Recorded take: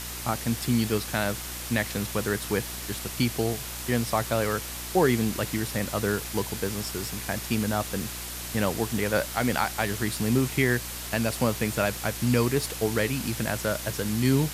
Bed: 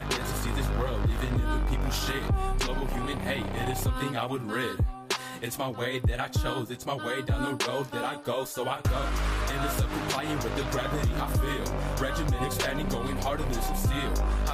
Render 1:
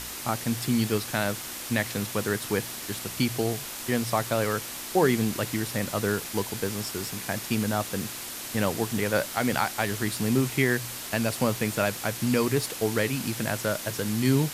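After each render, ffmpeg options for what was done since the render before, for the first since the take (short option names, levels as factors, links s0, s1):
-af "bandreject=f=60:t=h:w=4,bandreject=f=120:t=h:w=4,bandreject=f=180:t=h:w=4"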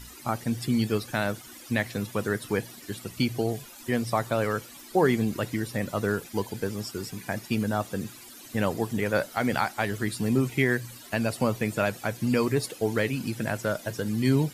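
-af "afftdn=nr=15:nf=-37"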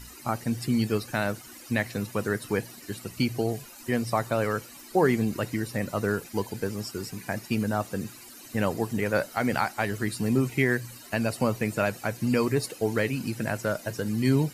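-af "bandreject=f=3400:w=7.9"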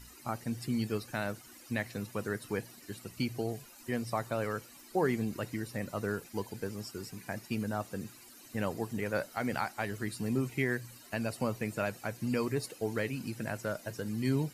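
-af "volume=0.422"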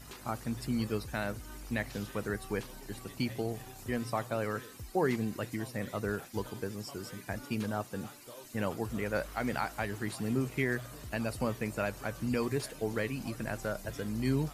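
-filter_complex "[1:a]volume=0.1[s0];[0:a][s0]amix=inputs=2:normalize=0"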